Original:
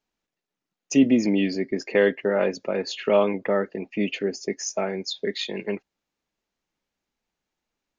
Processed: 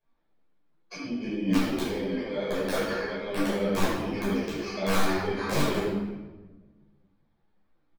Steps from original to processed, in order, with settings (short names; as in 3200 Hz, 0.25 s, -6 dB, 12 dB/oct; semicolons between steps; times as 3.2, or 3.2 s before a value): FFT order left unsorted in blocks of 16 samples; LPF 3700 Hz 24 dB/oct; negative-ratio compressor -31 dBFS, ratio -1; wrapped overs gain 19 dB; speakerphone echo 80 ms, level -8 dB; shoebox room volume 800 m³, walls mixed, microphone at 5.5 m; ensemble effect; gain -6 dB